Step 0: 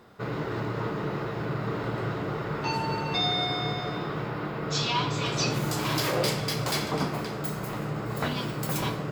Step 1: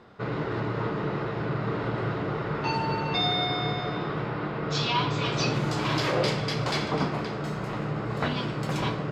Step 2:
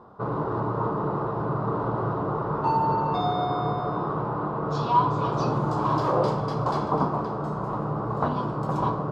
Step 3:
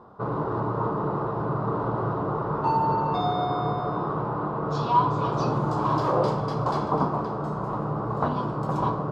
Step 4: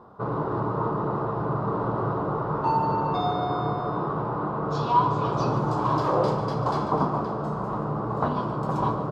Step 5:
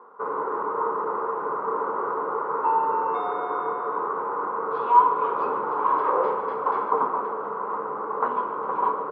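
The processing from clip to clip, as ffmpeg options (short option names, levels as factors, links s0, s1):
-af "lowpass=4600,volume=1.19"
-af "highshelf=f=1500:t=q:w=3:g=-12,volume=1.12"
-af anull
-af "aecho=1:1:143|286|429|572|715|858:0.224|0.121|0.0653|0.0353|0.019|0.0103"
-af "highpass=f=300:w=0.5412,highpass=f=300:w=1.3066,equalizer=f=320:t=q:w=4:g=-8,equalizer=f=460:t=q:w=4:g=7,equalizer=f=660:t=q:w=4:g=-9,equalizer=f=1000:t=q:w=4:g=7,equalizer=f=1400:t=q:w=4:g=5,equalizer=f=2100:t=q:w=4:g=5,lowpass=f=2500:w=0.5412,lowpass=f=2500:w=1.3066,volume=0.841"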